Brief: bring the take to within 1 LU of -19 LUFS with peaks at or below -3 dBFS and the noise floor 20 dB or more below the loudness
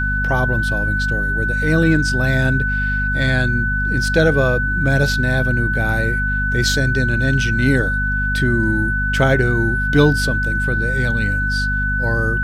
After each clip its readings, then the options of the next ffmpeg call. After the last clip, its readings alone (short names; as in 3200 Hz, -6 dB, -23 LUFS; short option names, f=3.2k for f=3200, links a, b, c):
hum 50 Hz; harmonics up to 250 Hz; hum level -19 dBFS; steady tone 1500 Hz; tone level -19 dBFS; loudness -17.5 LUFS; peak -1.5 dBFS; loudness target -19.0 LUFS
-> -af "bandreject=f=50:t=h:w=4,bandreject=f=100:t=h:w=4,bandreject=f=150:t=h:w=4,bandreject=f=200:t=h:w=4,bandreject=f=250:t=h:w=4"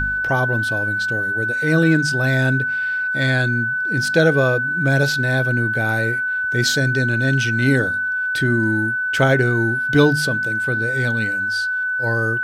hum none; steady tone 1500 Hz; tone level -19 dBFS
-> -af "bandreject=f=1.5k:w=30"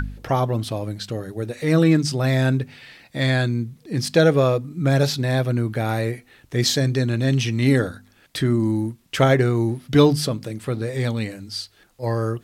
steady tone none; loudness -21.5 LUFS; peak -3.0 dBFS; loudness target -19.0 LUFS
-> -af "volume=2.5dB,alimiter=limit=-3dB:level=0:latency=1"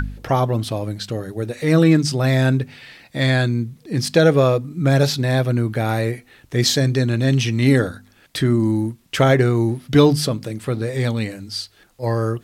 loudness -19.0 LUFS; peak -3.0 dBFS; noise floor -54 dBFS